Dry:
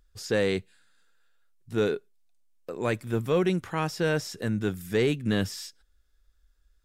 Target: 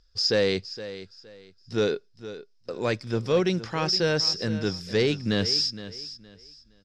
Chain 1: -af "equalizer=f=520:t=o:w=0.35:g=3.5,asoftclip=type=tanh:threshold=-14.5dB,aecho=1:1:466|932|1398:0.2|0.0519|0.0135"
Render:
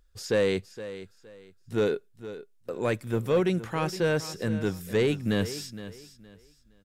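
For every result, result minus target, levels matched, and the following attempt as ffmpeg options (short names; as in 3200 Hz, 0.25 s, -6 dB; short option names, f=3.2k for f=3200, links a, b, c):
soft clip: distortion +18 dB; 4000 Hz band -10.0 dB
-af "equalizer=f=520:t=o:w=0.35:g=3.5,asoftclip=type=tanh:threshold=-4dB,aecho=1:1:466|932|1398:0.2|0.0519|0.0135"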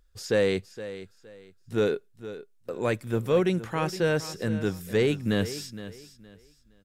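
4000 Hz band -10.0 dB
-af "lowpass=f=5.1k:t=q:w=9.7,equalizer=f=520:t=o:w=0.35:g=3.5,asoftclip=type=tanh:threshold=-4dB,aecho=1:1:466|932|1398:0.2|0.0519|0.0135"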